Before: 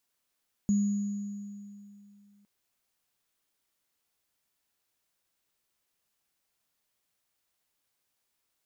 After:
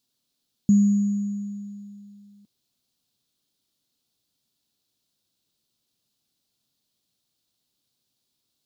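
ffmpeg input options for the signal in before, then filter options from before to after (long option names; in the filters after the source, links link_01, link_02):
-f lavfi -i "aevalsrc='0.0891*pow(10,-3*t/2.67)*sin(2*PI*203*t)+0.00944*pow(10,-3*t/2.12)*sin(2*PI*6780*t)':duration=1.76:sample_rate=44100"
-af "equalizer=frequency=125:width_type=o:width=1:gain=9,equalizer=frequency=250:width_type=o:width=1:gain=9,equalizer=frequency=1000:width_type=o:width=1:gain=-3,equalizer=frequency=2000:width_type=o:width=1:gain=-9,equalizer=frequency=4000:width_type=o:width=1:gain=11"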